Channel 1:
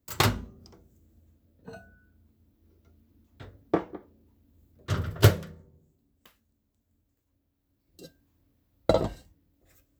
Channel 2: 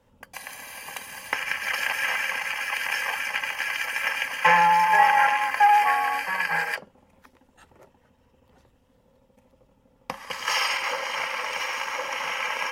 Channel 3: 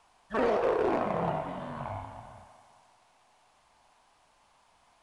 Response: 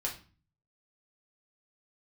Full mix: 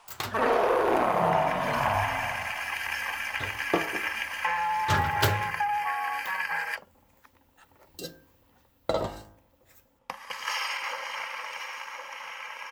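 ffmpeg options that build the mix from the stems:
-filter_complex "[0:a]dynaudnorm=framelen=160:gausssize=9:maxgain=9.5dB,flanger=delay=5.7:depth=4.3:regen=86:speed=1.6:shape=sinusoidal,volume=-5.5dB[link_01];[1:a]acompressor=threshold=-23dB:ratio=4,volume=-18dB[link_02];[2:a]volume=1dB,asplit=2[link_03][link_04];[link_04]volume=-5.5dB[link_05];[link_01][link_03]amix=inputs=2:normalize=0,bandreject=frequency=52.62:width_type=h:width=4,bandreject=frequency=105.24:width_type=h:width=4,bandreject=frequency=157.86:width_type=h:width=4,bandreject=frequency=210.48:width_type=h:width=4,bandreject=frequency=263.1:width_type=h:width=4,bandreject=frequency=315.72:width_type=h:width=4,bandreject=frequency=368.34:width_type=h:width=4,bandreject=frequency=420.96:width_type=h:width=4,bandreject=frequency=473.58:width_type=h:width=4,bandreject=frequency=526.2:width_type=h:width=4,bandreject=frequency=578.82:width_type=h:width=4,bandreject=frequency=631.44:width_type=h:width=4,bandreject=frequency=684.06:width_type=h:width=4,bandreject=frequency=736.68:width_type=h:width=4,bandreject=frequency=789.3:width_type=h:width=4,bandreject=frequency=841.92:width_type=h:width=4,bandreject=frequency=894.54:width_type=h:width=4,bandreject=frequency=947.16:width_type=h:width=4,bandreject=frequency=999.78:width_type=h:width=4,bandreject=frequency=1052.4:width_type=h:width=4,bandreject=frequency=1105.02:width_type=h:width=4,bandreject=frequency=1157.64:width_type=h:width=4,bandreject=frequency=1210.26:width_type=h:width=4,bandreject=frequency=1262.88:width_type=h:width=4,bandreject=frequency=1315.5:width_type=h:width=4,bandreject=frequency=1368.12:width_type=h:width=4,bandreject=frequency=1420.74:width_type=h:width=4,bandreject=frequency=1473.36:width_type=h:width=4,bandreject=frequency=1525.98:width_type=h:width=4,bandreject=frequency=1578.6:width_type=h:width=4,bandreject=frequency=1631.22:width_type=h:width=4,bandreject=frequency=1683.84:width_type=h:width=4,bandreject=frequency=1736.46:width_type=h:width=4,alimiter=limit=-23dB:level=0:latency=1:release=439,volume=0dB[link_06];[link_05]aecho=0:1:71:1[link_07];[link_02][link_06][link_07]amix=inputs=3:normalize=0,firequalizer=gain_entry='entry(200,0);entry(920,8);entry(9100,3)':delay=0.05:min_phase=1,dynaudnorm=framelen=220:gausssize=17:maxgain=7.5dB,highshelf=frequency=11000:gain=7"

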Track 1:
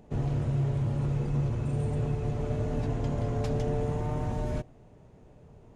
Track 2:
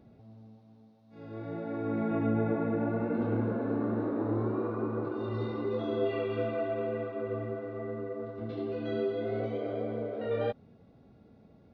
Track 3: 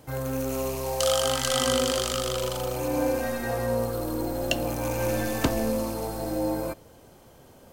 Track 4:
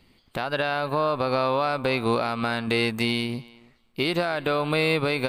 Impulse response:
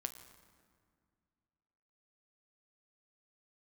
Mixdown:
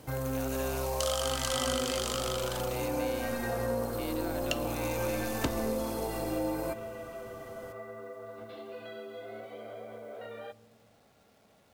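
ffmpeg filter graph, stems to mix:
-filter_complex "[1:a]acompressor=threshold=-36dB:ratio=3,volume=2.5dB,asplit=2[link_01][link_02];[link_02]volume=-13dB[link_03];[2:a]volume=-2dB,asplit=2[link_04][link_05];[link_05]volume=-8.5dB[link_06];[3:a]volume=-9.5dB[link_07];[link_01][link_07]amix=inputs=2:normalize=0,highpass=frequency=490:width=0.5412,highpass=frequency=490:width=1.3066,alimiter=level_in=9dB:limit=-24dB:level=0:latency=1:release=227,volume=-9dB,volume=0dB[link_08];[link_04]acompressor=threshold=-34dB:ratio=6,volume=0dB[link_09];[4:a]atrim=start_sample=2205[link_10];[link_03][link_06]amix=inputs=2:normalize=0[link_11];[link_11][link_10]afir=irnorm=-1:irlink=0[link_12];[link_08][link_09][link_12]amix=inputs=3:normalize=0,acrusher=bits=10:mix=0:aa=0.000001"

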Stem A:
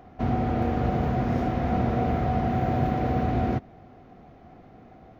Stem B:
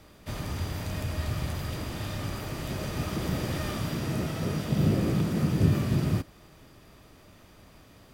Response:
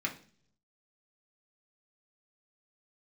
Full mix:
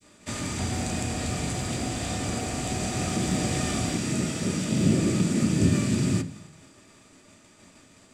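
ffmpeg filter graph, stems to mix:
-filter_complex "[0:a]alimiter=limit=-20.5dB:level=0:latency=1:release=277,adelay=400,volume=-4dB[link_01];[1:a]agate=range=-33dB:threshold=-48dB:ratio=3:detection=peak,lowpass=frequency=7800:width_type=q:width=5.4,adynamicequalizer=threshold=0.00562:dfrequency=1000:dqfactor=0.71:tfrequency=1000:tqfactor=0.71:attack=5:release=100:ratio=0.375:range=2.5:mode=cutabove:tftype=bell,volume=0dB,asplit=2[link_02][link_03];[link_03]volume=-4dB[link_04];[2:a]atrim=start_sample=2205[link_05];[link_04][link_05]afir=irnorm=-1:irlink=0[link_06];[link_01][link_02][link_06]amix=inputs=3:normalize=0"

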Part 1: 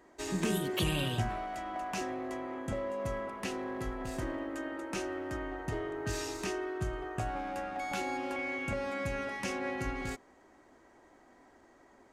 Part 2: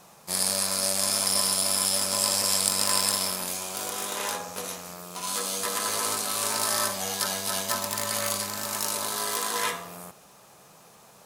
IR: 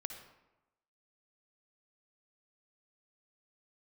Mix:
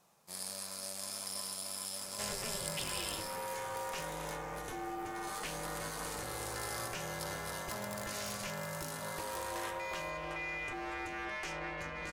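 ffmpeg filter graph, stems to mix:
-filter_complex "[0:a]acompressor=threshold=-36dB:ratio=6,asplit=2[link_01][link_02];[link_02]highpass=frequency=720:poles=1,volume=16dB,asoftclip=type=tanh:threshold=-22.5dB[link_03];[link_01][link_03]amix=inputs=2:normalize=0,lowpass=frequency=6800:poles=1,volume=-6dB,aeval=exprs='val(0)*sin(2*PI*210*n/s)':channel_layout=same,adelay=2000,volume=-4dB[link_04];[1:a]volume=-16.5dB[link_05];[link_04][link_05]amix=inputs=2:normalize=0"

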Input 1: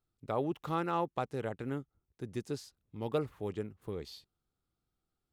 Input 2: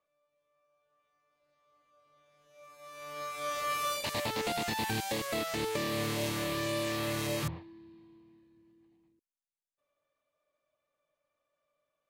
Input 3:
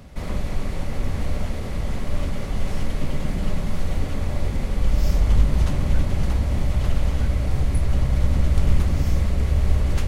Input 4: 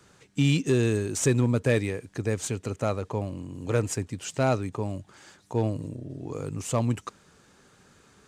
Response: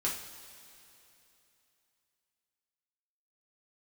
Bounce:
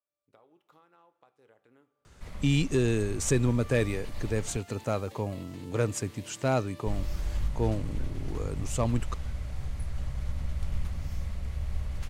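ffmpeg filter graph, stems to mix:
-filter_complex "[0:a]highpass=130,equalizer=frequency=170:width_type=o:width=1.6:gain=-10.5,acompressor=threshold=-45dB:ratio=10,adelay=50,volume=-14.5dB,asplit=2[link_01][link_02];[link_02]volume=-12dB[link_03];[1:a]volume=-17.5dB[link_04];[2:a]equalizer=frequency=340:width=0.95:gain=-9,adelay=2050,volume=-13dB,asplit=3[link_05][link_06][link_07];[link_05]atrim=end=4.57,asetpts=PTS-STARTPTS,afade=type=out:start_time=4.566:duration=0.004:curve=hsin[link_08];[link_06]atrim=start=4.57:end=6.86,asetpts=PTS-STARTPTS,volume=0[link_09];[link_07]atrim=start=6.86,asetpts=PTS-STARTPTS,afade=type=in:duration=0.004:curve=hsin[link_10];[link_08][link_09][link_10]concat=n=3:v=0:a=1[link_11];[3:a]adelay=2050,volume=-2.5dB[link_12];[4:a]atrim=start_sample=2205[link_13];[link_03][link_13]afir=irnorm=-1:irlink=0[link_14];[link_01][link_04][link_11][link_12][link_14]amix=inputs=5:normalize=0"

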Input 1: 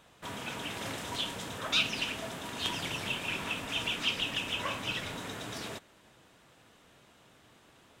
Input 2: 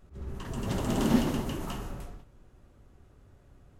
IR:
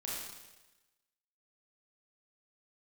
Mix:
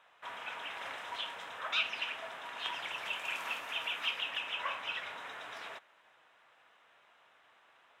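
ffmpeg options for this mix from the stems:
-filter_complex "[0:a]acrossover=split=600 3000:gain=0.141 1 0.126[link_01][link_02][link_03];[link_01][link_02][link_03]amix=inputs=3:normalize=0,bandreject=frequency=4500:width=12,volume=1dB[link_04];[1:a]highpass=1000,adelay=2350,volume=-12.5dB[link_05];[link_04][link_05]amix=inputs=2:normalize=0,lowshelf=frequency=280:gain=-11"

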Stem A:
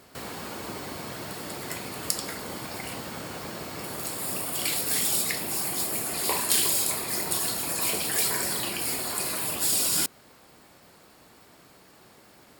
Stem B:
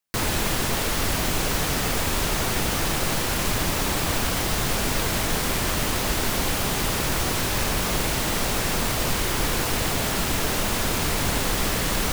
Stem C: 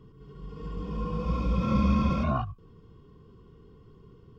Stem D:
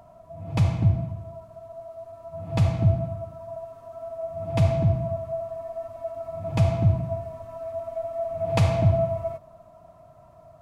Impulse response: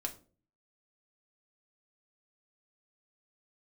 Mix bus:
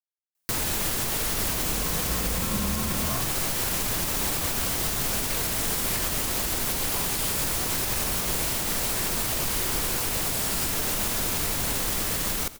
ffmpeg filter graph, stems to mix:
-filter_complex "[0:a]adelay=650,volume=-5.5dB[link_01];[1:a]highshelf=frequency=6200:gain=10,adelay=350,volume=-2.5dB,asplit=2[link_02][link_03];[link_03]volume=-19dB[link_04];[2:a]adelay=800,volume=0dB[link_05];[link_04]aecho=0:1:86|172|258|344|430|516:1|0.41|0.168|0.0689|0.0283|0.0116[link_06];[link_01][link_02][link_05][link_06]amix=inputs=4:normalize=0,alimiter=limit=-16.5dB:level=0:latency=1:release=155"

